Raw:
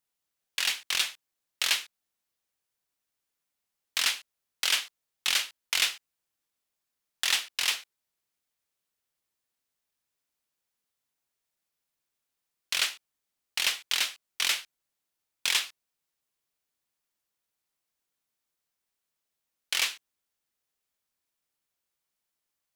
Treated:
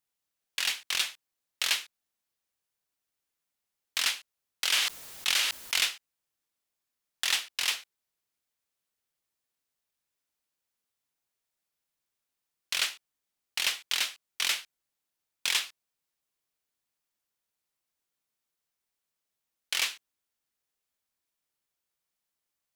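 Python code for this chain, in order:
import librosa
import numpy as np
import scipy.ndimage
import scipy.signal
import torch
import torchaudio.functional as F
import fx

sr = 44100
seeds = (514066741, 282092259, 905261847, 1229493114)

y = fx.sustainer(x, sr, db_per_s=38.0, at=(4.71, 5.8))
y = F.gain(torch.from_numpy(y), -1.5).numpy()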